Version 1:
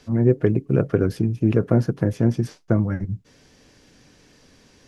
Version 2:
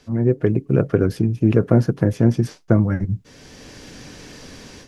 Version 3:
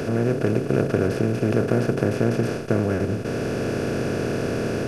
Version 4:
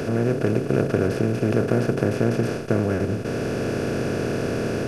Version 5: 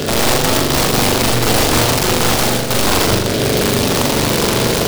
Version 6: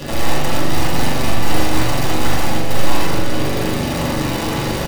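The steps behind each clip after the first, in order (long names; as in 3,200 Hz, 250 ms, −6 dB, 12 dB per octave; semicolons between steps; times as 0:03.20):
automatic gain control gain up to 15 dB; level −1 dB
compressor on every frequency bin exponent 0.2; low-shelf EQ 480 Hz −5 dB; level −6.5 dB
no processing that can be heard
wrap-around overflow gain 17.5 dB; on a send: flutter between parallel walls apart 7.1 metres, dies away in 0.94 s; on the sum: short delay modulated by noise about 3,300 Hz, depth 0.13 ms; level +7 dB
single-tap delay 445 ms −8 dB; convolution reverb RT60 0.50 s, pre-delay 3 ms, DRR −5 dB; level −13.5 dB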